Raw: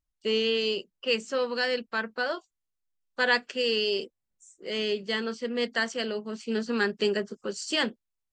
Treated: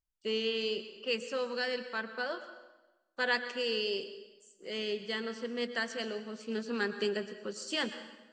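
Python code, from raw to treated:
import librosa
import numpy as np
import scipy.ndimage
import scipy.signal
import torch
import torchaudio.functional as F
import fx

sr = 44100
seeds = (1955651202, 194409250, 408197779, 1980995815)

y = fx.rev_plate(x, sr, seeds[0], rt60_s=1.1, hf_ratio=0.85, predelay_ms=95, drr_db=10.5)
y = F.gain(torch.from_numpy(y), -6.5).numpy()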